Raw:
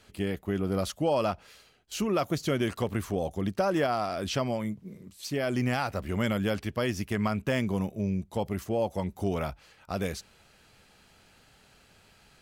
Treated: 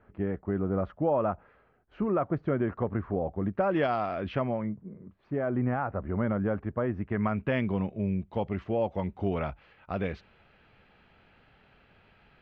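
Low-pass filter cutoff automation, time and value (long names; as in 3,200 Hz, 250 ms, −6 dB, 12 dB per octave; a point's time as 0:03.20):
low-pass filter 24 dB per octave
0:03.46 1,600 Hz
0:03.86 3,500 Hz
0:04.85 1,500 Hz
0:06.90 1,500 Hz
0:07.59 2,900 Hz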